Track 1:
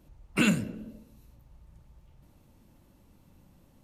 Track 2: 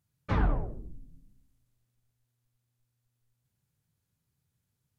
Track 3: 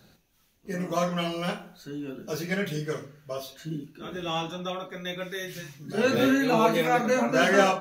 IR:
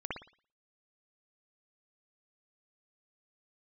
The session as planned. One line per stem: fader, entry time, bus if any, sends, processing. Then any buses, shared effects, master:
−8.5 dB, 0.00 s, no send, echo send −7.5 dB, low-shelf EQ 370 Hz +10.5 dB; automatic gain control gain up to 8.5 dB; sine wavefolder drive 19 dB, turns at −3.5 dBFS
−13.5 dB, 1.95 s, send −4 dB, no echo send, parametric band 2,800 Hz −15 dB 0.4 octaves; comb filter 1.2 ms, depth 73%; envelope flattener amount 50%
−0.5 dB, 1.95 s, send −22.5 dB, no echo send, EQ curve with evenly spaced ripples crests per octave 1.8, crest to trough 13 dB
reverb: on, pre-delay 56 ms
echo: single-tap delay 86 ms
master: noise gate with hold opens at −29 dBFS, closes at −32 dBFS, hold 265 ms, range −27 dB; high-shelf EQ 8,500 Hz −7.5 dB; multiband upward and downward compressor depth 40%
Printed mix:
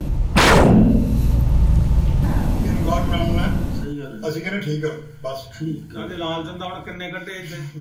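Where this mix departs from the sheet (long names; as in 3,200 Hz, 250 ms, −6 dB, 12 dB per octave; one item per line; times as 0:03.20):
stem 1 −8.5 dB → −2.0 dB
reverb return +8.5 dB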